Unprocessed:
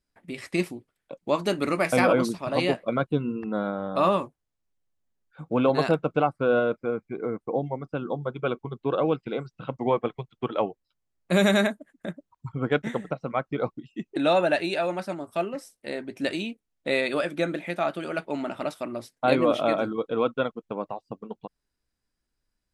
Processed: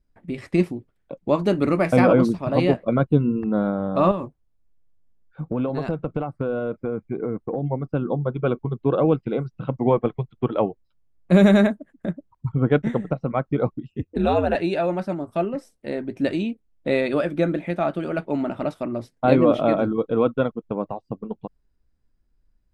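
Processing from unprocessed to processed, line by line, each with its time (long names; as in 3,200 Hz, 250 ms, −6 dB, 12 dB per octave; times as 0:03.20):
0:04.11–0:07.68: downward compressor 5 to 1, threshold −27 dBFS
0:13.90–0:14.55: ring modulation 86 Hz
whole clip: spectral tilt −3 dB per octave; level +1.5 dB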